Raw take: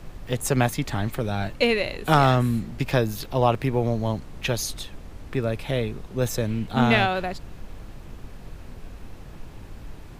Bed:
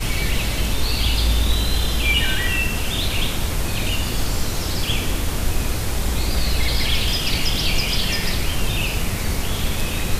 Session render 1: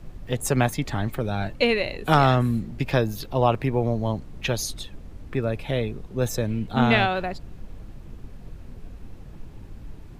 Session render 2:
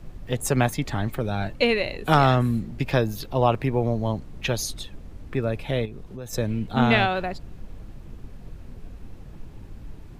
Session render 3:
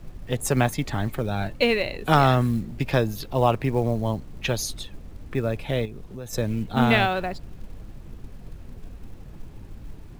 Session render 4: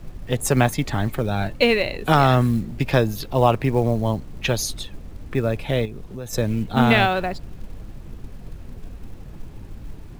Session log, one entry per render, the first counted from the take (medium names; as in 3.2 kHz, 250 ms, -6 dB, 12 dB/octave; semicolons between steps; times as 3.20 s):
noise reduction 7 dB, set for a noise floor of -42 dBFS
5.85–6.33 s: compression 5:1, threshold -33 dBFS
short-mantissa float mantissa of 4-bit
trim +3.5 dB; peak limiter -3 dBFS, peak gain reduction 2.5 dB